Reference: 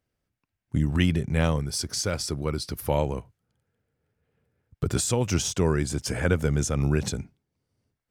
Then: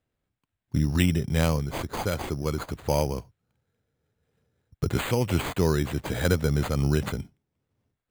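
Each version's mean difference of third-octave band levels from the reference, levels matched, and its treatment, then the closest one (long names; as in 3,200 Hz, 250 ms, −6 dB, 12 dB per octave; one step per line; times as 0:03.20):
6.0 dB: low-pass filter 6,700 Hz 12 dB per octave
bad sample-rate conversion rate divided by 8×, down none, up hold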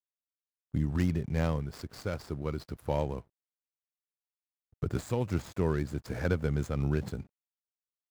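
3.5 dB: running median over 15 samples
dead-zone distortion −54 dBFS
level −5.5 dB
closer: second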